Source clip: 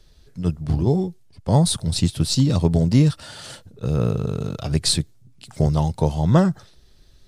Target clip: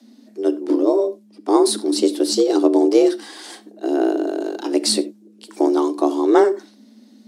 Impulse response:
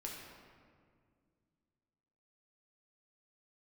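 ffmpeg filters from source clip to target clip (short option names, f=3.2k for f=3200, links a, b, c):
-filter_complex "[0:a]afreqshift=210,equalizer=f=130:t=o:w=0.7:g=8,asplit=2[a][b];[1:a]atrim=start_sample=2205,atrim=end_sample=4410,lowshelf=f=320:g=9[c];[b][c]afir=irnorm=-1:irlink=0,volume=-5.5dB[d];[a][d]amix=inputs=2:normalize=0,volume=-1.5dB"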